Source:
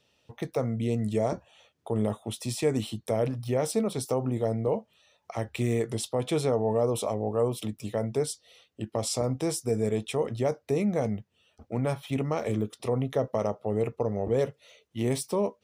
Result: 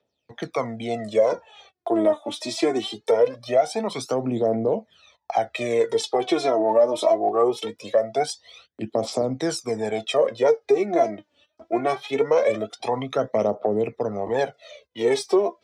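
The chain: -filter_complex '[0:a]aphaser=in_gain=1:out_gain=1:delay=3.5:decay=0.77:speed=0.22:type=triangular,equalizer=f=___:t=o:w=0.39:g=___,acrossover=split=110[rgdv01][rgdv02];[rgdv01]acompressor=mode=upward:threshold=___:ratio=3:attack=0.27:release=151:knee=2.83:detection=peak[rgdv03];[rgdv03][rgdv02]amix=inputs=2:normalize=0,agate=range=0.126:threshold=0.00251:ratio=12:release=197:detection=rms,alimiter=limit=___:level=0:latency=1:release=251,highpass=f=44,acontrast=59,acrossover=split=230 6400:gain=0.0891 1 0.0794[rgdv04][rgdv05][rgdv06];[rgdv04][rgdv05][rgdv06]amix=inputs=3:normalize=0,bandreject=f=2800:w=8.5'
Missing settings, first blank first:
680, 5.5, 0.00355, 0.188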